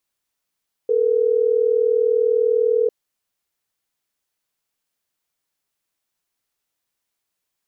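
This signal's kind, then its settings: call progress tone ringback tone, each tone -17.5 dBFS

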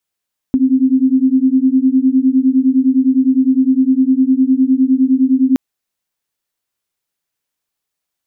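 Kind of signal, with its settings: beating tones 257 Hz, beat 9.8 Hz, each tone -12 dBFS 5.02 s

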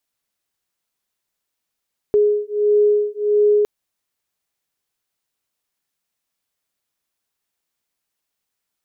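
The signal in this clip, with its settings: beating tones 416 Hz, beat 1.5 Hz, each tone -16.5 dBFS 1.51 s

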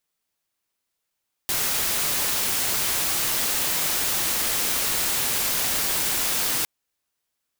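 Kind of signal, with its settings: noise white, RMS -24 dBFS 5.16 s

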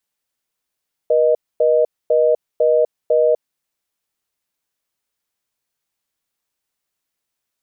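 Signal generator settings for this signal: call progress tone reorder tone, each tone -14 dBFS 2.39 s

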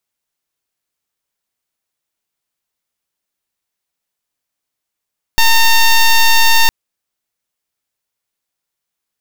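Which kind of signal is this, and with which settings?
pulse 911 Hz, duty 10% -8 dBFS 1.31 s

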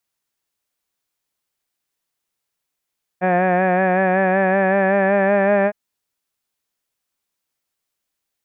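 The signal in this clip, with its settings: formant-synthesis vowel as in had, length 2.51 s, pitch 180 Hz, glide +2 st, vibrato depth 0.45 st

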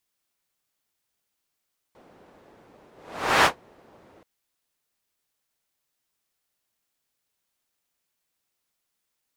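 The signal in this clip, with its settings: whoosh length 2.28 s, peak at 1.50 s, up 0.56 s, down 0.12 s, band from 500 Hz, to 1.3 kHz, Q 0.92, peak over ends 37.5 dB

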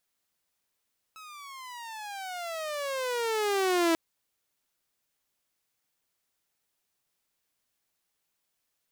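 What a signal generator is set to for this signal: gliding synth tone saw, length 2.79 s, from 1.3 kHz, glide -24 st, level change +23 dB, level -19 dB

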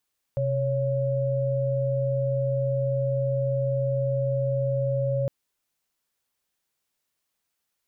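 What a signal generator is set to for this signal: chord C3/C#5 sine, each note -25 dBFS 4.91 s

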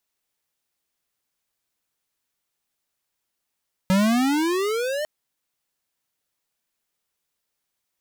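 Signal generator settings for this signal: gliding synth tone square, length 1.15 s, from 184 Hz, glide +21 st, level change -9 dB, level -17.5 dB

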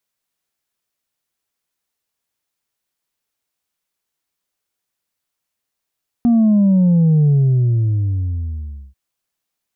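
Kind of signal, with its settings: sub drop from 240 Hz, over 2.69 s, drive 2 dB, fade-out 1.67 s, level -10 dB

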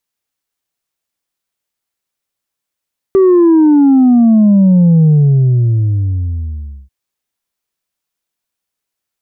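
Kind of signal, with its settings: sub drop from 390 Hz, over 3.74 s, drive 2 dB, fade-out 1.84 s, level -5 dB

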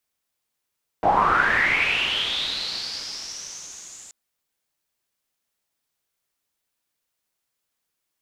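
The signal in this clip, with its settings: swept filtered noise white, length 3.08 s lowpass, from 660 Hz, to 7.3 kHz, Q 8.2, linear, gain ramp -35.5 dB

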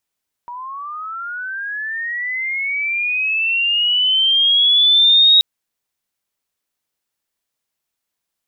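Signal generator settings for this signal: sweep linear 950 Hz -> 3.8 kHz -27.5 dBFS -> -7 dBFS 4.93 s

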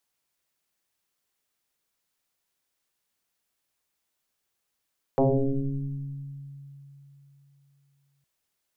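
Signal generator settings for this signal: FM tone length 3.06 s, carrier 140 Hz, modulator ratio 0.96, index 5.1, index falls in 2.26 s exponential, decay 3.51 s, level -17 dB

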